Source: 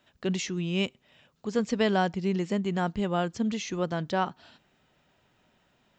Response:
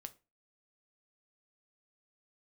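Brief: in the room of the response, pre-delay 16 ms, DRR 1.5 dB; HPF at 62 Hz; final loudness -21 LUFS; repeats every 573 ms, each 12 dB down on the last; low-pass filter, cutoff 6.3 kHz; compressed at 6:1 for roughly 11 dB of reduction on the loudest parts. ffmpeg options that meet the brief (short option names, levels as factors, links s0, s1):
-filter_complex "[0:a]highpass=62,lowpass=6300,acompressor=threshold=0.0251:ratio=6,aecho=1:1:573|1146|1719:0.251|0.0628|0.0157,asplit=2[s0][s1];[1:a]atrim=start_sample=2205,adelay=16[s2];[s1][s2]afir=irnorm=-1:irlink=0,volume=1.58[s3];[s0][s3]amix=inputs=2:normalize=0,volume=4.47"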